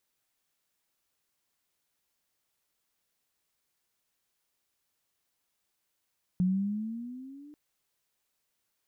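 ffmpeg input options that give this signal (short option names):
-f lavfi -i "aevalsrc='pow(10,(-22-25.5*t/1.14)/20)*sin(2*PI*179*1.14/(9*log(2)/12)*(exp(9*log(2)/12*t/1.14)-1))':d=1.14:s=44100"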